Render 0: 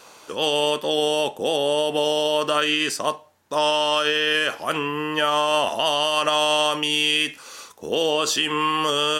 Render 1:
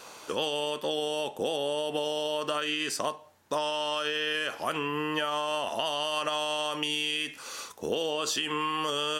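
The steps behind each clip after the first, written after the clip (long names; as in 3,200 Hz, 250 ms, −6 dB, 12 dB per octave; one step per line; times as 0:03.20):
downward compressor 10 to 1, threshold −26 dBFS, peak gain reduction 11 dB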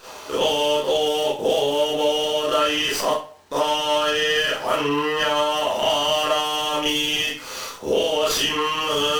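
surface crackle 350 per second −52 dBFS
convolution reverb RT60 0.35 s, pre-delay 26 ms, DRR −8.5 dB
windowed peak hold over 3 samples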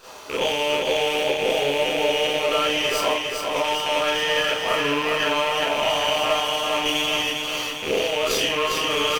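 loose part that buzzes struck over −38 dBFS, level −15 dBFS
log-companded quantiser 8 bits
repeating echo 403 ms, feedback 56%, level −4.5 dB
level −3 dB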